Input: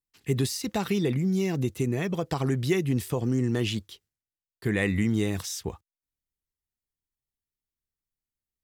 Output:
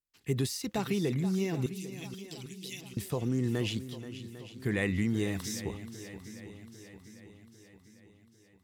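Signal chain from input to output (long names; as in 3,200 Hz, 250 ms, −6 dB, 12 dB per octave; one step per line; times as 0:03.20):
0:01.66–0:02.97: Butterworth high-pass 2,600 Hz 36 dB per octave
on a send: feedback echo with a long and a short gap by turns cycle 799 ms, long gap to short 1.5 to 1, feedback 50%, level −13 dB
on the sum: level −4.5 dB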